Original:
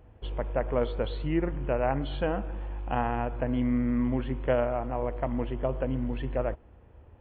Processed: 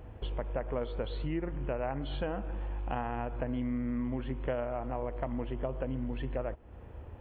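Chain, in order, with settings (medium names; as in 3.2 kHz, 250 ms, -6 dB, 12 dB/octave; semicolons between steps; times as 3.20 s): compression 3:1, threshold -42 dBFS, peak gain reduction 15.5 dB; trim +6.5 dB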